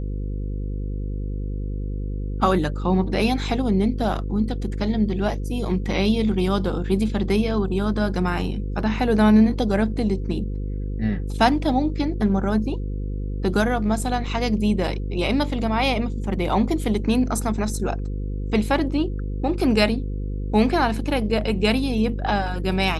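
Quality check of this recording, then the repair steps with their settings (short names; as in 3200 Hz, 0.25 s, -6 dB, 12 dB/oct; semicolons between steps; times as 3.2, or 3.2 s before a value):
buzz 50 Hz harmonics 10 -27 dBFS
14.26 gap 3.6 ms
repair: de-hum 50 Hz, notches 10; interpolate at 14.26, 3.6 ms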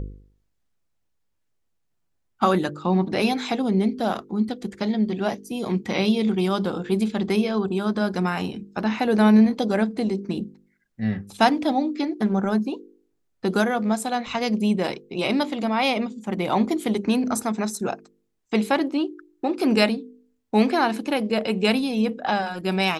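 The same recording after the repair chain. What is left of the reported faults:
none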